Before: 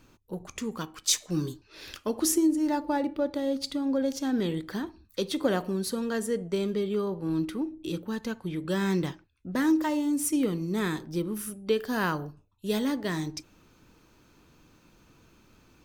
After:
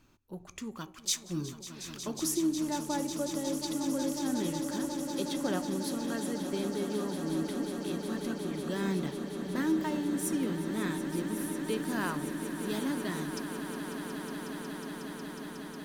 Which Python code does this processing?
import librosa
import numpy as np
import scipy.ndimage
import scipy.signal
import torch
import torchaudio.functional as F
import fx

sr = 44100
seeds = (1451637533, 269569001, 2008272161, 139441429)

y = fx.peak_eq(x, sr, hz=480.0, db=-8.5, octaves=0.21)
y = fx.echo_swell(y, sr, ms=182, loudest=8, wet_db=-12.5)
y = F.gain(torch.from_numpy(y), -6.0).numpy()